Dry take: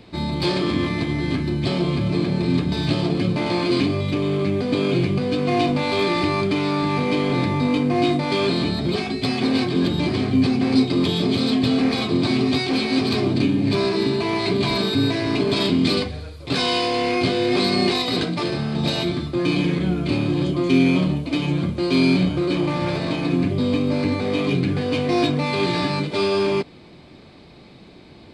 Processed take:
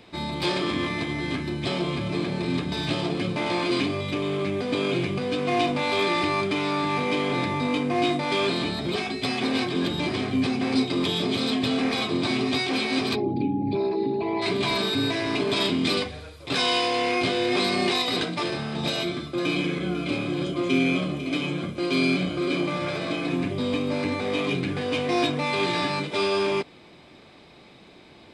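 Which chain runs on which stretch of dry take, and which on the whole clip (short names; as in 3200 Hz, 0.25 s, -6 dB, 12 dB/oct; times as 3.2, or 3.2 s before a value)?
13.14–14.41 formant sharpening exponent 2 + notch 1200 Hz, Q 17 + whine 830 Hz -34 dBFS
18.88–23.28 notch comb 920 Hz + echo 0.497 s -11.5 dB
whole clip: low shelf 340 Hz -10 dB; notch 4400 Hz, Q 7.7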